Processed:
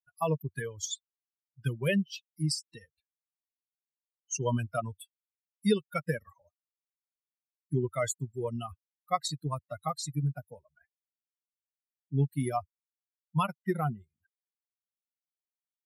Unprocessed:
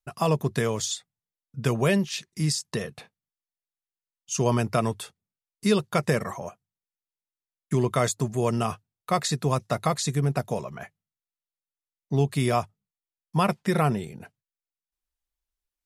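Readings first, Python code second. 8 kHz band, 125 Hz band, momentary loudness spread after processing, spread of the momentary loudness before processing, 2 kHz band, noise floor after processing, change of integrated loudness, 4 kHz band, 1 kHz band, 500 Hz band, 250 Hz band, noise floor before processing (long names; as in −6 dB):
−6.5 dB, −6.5 dB, 8 LU, 15 LU, −7.0 dB, below −85 dBFS, −6.5 dB, −7.0 dB, −7.0 dB, −8.0 dB, −7.0 dB, below −85 dBFS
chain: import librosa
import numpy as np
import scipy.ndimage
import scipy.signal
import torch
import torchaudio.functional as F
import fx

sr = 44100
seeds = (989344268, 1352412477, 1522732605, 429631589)

y = fx.bin_expand(x, sr, power=3.0)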